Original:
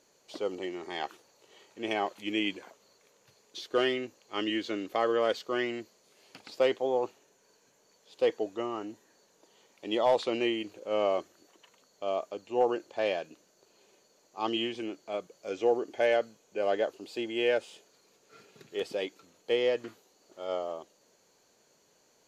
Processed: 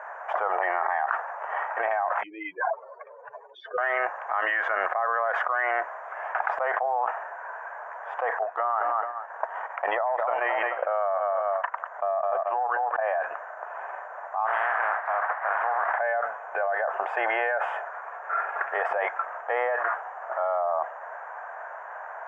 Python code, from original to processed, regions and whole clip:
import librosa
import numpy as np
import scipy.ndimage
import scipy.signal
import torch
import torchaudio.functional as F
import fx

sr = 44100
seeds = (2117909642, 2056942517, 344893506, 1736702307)

y = fx.chain(x, sr, fx.spec_expand(power=3.0),
    fx.notch(hz=340.0, q=9.6), at=(2.23, 3.78))
y = fx.chain(y, sr, fx.transient(attack_db=9, sustain_db=-12),
    fx.echo_feedback(ms=217, feedback_pct=29, wet_db=-20.0), at=(8.42, 13.0))
y = fx.spec_flatten(y, sr, power=0.45, at=(14.45, 15.99), fade=0.02)
y = fx.sample_hold(y, sr, seeds[0], rate_hz=6400.0, jitter_pct=0, at=(14.45, 15.99), fade=0.02)
y = scipy.signal.sosfilt(scipy.signal.ellip(3, 1.0, 50, [680.0, 1700.0], 'bandpass', fs=sr, output='sos'), y)
y = fx.env_flatten(y, sr, amount_pct=100)
y = F.gain(torch.from_numpy(y), -3.5).numpy()